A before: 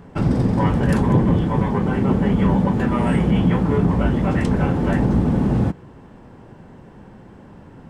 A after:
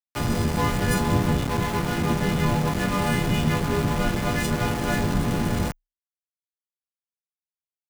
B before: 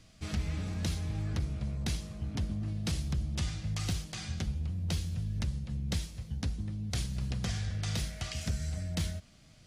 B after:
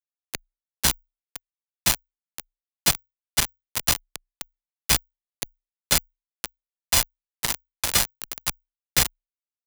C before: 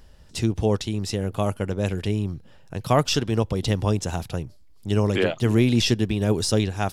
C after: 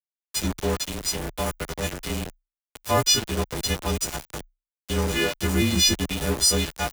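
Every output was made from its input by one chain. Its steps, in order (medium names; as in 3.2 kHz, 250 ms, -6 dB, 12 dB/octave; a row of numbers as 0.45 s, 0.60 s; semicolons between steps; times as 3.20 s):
partials quantised in pitch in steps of 3 st; small samples zeroed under -22.5 dBFS; frequency shift -31 Hz; normalise loudness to -24 LUFS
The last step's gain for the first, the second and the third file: -3.5 dB, +15.5 dB, -3.0 dB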